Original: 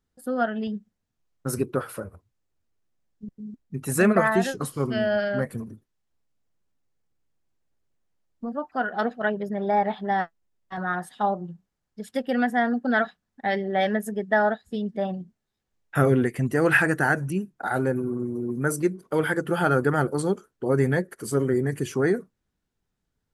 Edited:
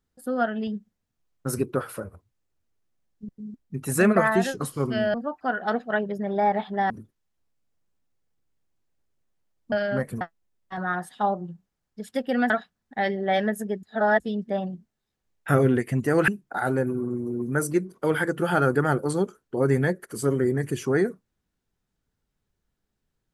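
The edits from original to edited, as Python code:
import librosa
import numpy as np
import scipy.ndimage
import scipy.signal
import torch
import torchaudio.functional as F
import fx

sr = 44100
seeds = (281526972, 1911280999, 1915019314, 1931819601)

y = fx.edit(x, sr, fx.swap(start_s=5.14, length_s=0.49, other_s=8.45, other_length_s=1.76),
    fx.cut(start_s=12.5, length_s=0.47),
    fx.reverse_span(start_s=14.3, length_s=0.37),
    fx.cut(start_s=16.75, length_s=0.62), tone=tone)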